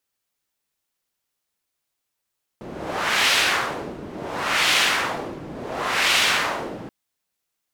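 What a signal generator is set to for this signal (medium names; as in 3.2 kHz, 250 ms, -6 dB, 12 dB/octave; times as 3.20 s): wind-like swept noise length 4.28 s, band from 300 Hz, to 2.8 kHz, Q 1.1, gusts 3, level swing 17 dB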